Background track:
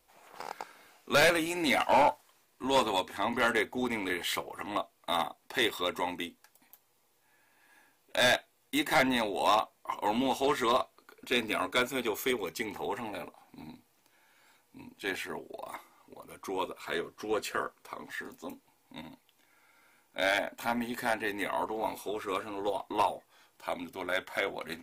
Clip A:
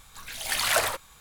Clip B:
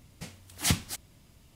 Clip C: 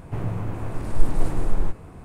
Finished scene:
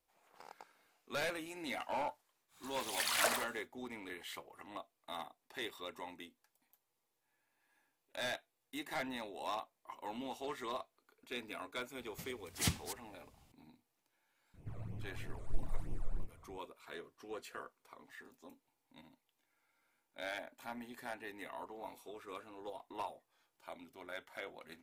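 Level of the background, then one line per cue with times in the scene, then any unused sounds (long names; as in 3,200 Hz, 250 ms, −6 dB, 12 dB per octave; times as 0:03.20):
background track −14.5 dB
0:02.48: mix in A −9 dB, fades 0.10 s + high-pass filter 170 Hz
0:11.97: mix in B −8.5 dB
0:14.54: mix in C −17.5 dB + all-pass phaser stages 12, 3.1 Hz, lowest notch 260–1,500 Hz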